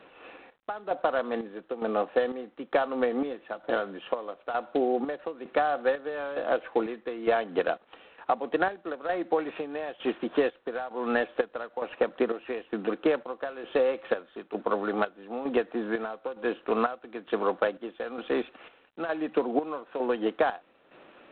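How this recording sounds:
a quantiser's noise floor 12 bits, dither none
chopped level 1.1 Hz, depth 65%, duty 55%
G.726

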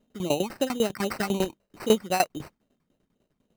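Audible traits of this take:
phaser sweep stages 12, 3.8 Hz, lowest notch 520–4,900 Hz
tremolo saw down 10 Hz, depth 90%
aliases and images of a low sample rate 3,400 Hz, jitter 0%

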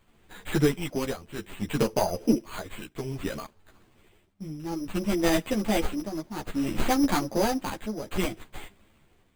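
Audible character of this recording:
a buzz of ramps at a fixed pitch in blocks of 8 samples
tremolo triangle 0.6 Hz, depth 80%
aliases and images of a low sample rate 5,500 Hz, jitter 0%
a shimmering, thickened sound

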